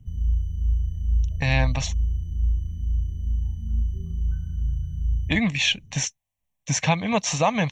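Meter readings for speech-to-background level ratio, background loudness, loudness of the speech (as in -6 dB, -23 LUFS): 3.5 dB, -27.5 LUFS, -24.0 LUFS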